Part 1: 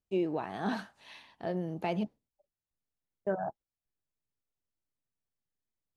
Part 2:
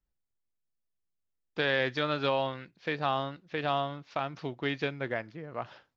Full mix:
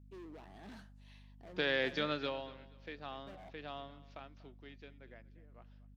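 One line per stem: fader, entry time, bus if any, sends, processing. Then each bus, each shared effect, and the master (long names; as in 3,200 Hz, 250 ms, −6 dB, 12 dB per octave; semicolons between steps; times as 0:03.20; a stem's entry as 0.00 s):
−12.0 dB, 0.00 s, no send, no echo send, gain into a clipping stage and back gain 35.5 dB
0:02.12 −3 dB → 0:02.46 −13 dB → 0:04.09 −13 dB → 0:04.66 −21.5 dB, 0.00 s, no send, echo send −19 dB, no processing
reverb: not used
echo: repeating echo 240 ms, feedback 29%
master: high-pass filter 170 Hz 24 dB per octave; parametric band 970 Hz −5 dB 1.6 octaves; mains hum 50 Hz, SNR 14 dB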